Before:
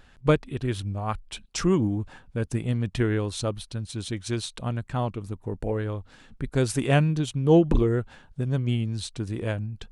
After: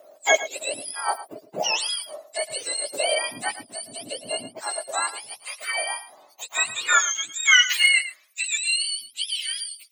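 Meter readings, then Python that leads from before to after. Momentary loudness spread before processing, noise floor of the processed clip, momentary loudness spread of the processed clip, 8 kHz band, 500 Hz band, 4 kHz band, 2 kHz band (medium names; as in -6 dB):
12 LU, -56 dBFS, 17 LU, +15.0 dB, -4.0 dB, +15.0 dB, +15.0 dB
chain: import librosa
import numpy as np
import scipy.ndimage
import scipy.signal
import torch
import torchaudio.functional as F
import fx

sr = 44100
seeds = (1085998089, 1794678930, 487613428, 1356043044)

y = fx.octave_mirror(x, sr, pivot_hz=1000.0)
y = fx.filter_sweep_highpass(y, sr, from_hz=620.0, to_hz=3200.0, start_s=5.53, end_s=8.96, q=4.4)
y = y + 10.0 ** (-14.0 / 20.0) * np.pad(y, (int(110 * sr / 1000.0), 0))[:len(y)]
y = F.gain(torch.from_numpy(y), 2.5).numpy()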